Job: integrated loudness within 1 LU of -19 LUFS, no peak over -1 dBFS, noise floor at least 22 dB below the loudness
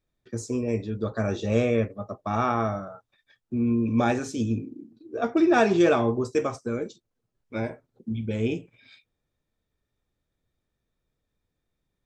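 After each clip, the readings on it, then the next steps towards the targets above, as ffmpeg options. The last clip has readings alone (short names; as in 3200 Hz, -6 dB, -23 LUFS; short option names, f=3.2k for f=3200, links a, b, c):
loudness -26.0 LUFS; peak -9.0 dBFS; loudness target -19.0 LUFS
-> -af "volume=7dB"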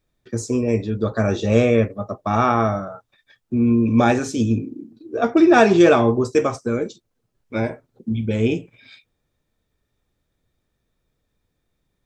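loudness -19.0 LUFS; peak -2.0 dBFS; noise floor -75 dBFS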